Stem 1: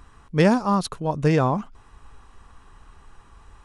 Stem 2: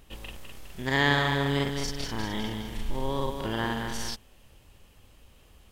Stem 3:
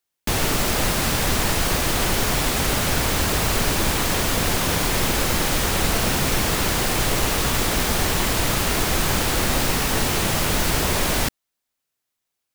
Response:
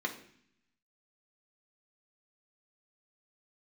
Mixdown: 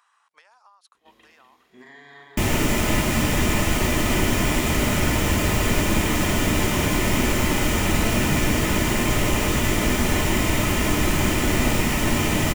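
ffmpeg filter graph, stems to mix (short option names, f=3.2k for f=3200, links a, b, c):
-filter_complex "[0:a]acompressor=threshold=-21dB:ratio=2.5,volume=-7.5dB,asplit=2[a][b];[1:a]asoftclip=type=tanh:threshold=-18.5dB,highpass=f=250:p=1,alimiter=level_in=2.5dB:limit=-24dB:level=0:latency=1:release=134,volume=-2.5dB,adelay=950,volume=-7.5dB,asplit=2[c][d];[d]volume=-7.5dB[e];[2:a]adelay=2100,volume=-1.5dB,asplit=2[f][g];[g]volume=-3.5dB[h];[b]apad=whole_len=293763[i];[c][i]sidechaincompress=threshold=-53dB:ratio=8:attack=16:release=206[j];[a][j]amix=inputs=2:normalize=0,highpass=f=850:w=0.5412,highpass=f=850:w=1.3066,acompressor=threshold=-52dB:ratio=12,volume=0dB[k];[3:a]atrim=start_sample=2205[l];[e][h]amix=inputs=2:normalize=0[m];[m][l]afir=irnorm=-1:irlink=0[n];[f][k][n]amix=inputs=3:normalize=0"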